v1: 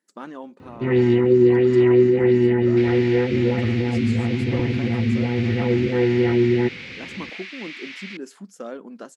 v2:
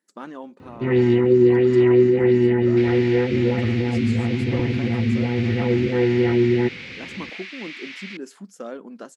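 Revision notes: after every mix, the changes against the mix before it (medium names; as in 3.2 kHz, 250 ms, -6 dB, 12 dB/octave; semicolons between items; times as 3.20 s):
no change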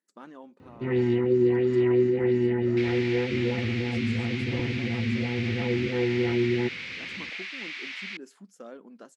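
speech -9.5 dB; first sound -7.0 dB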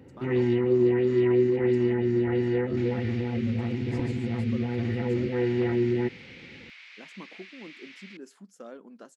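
first sound: entry -0.60 s; second sound -11.5 dB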